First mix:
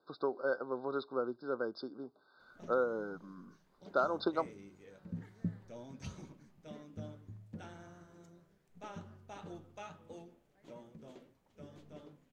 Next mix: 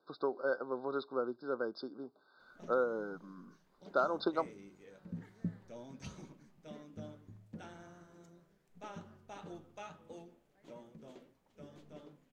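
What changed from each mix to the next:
master: add bell 89 Hz -7 dB 0.85 oct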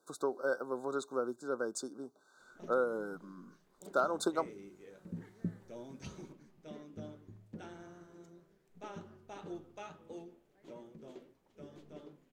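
speech: remove Chebyshev low-pass 5200 Hz, order 10; background: add bell 370 Hz +7 dB 0.44 oct

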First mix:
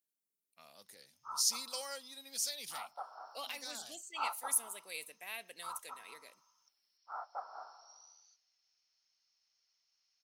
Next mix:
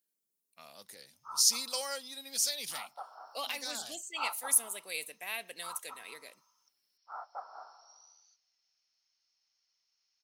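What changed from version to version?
speech +6.0 dB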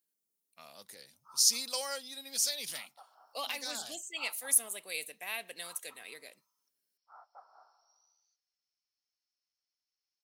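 background -12.0 dB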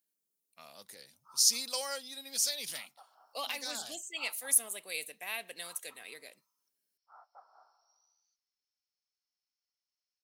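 reverb: off

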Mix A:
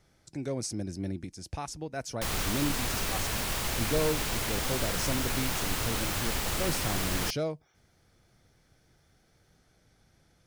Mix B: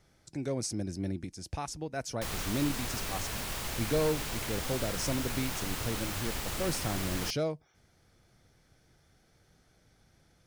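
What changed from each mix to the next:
background -5.0 dB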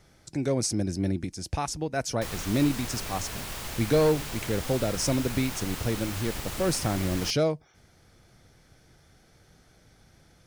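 speech +7.0 dB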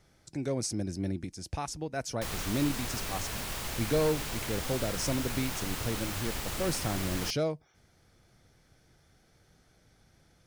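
speech -5.5 dB

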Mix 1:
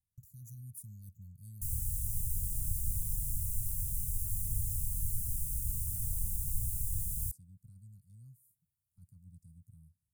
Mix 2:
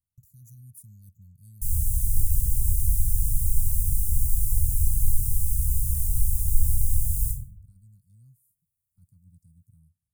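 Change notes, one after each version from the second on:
reverb: on, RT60 0.55 s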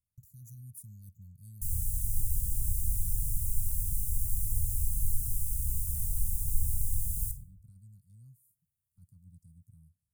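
background: send -11.0 dB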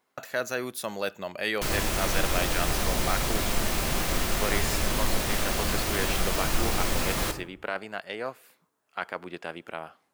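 speech: add tilt +2.5 dB/oct; master: remove inverse Chebyshev band-stop 350–3200 Hz, stop band 60 dB

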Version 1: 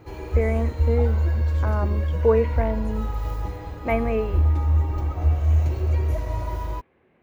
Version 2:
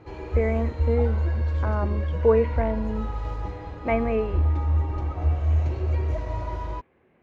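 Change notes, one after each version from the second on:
background: add low shelf 150 Hz -3.5 dB; master: add air absorption 110 m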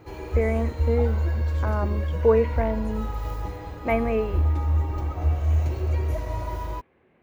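master: remove air absorption 110 m

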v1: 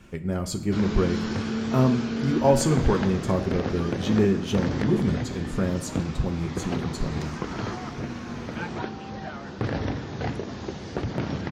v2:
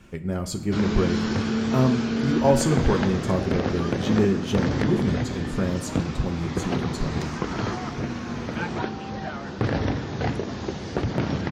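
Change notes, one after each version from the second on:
background +3.5 dB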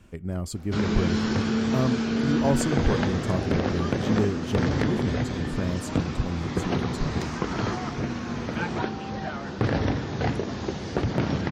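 reverb: off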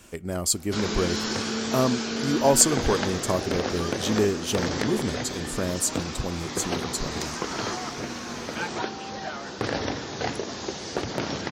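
speech +6.5 dB; master: add tone controls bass -11 dB, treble +11 dB

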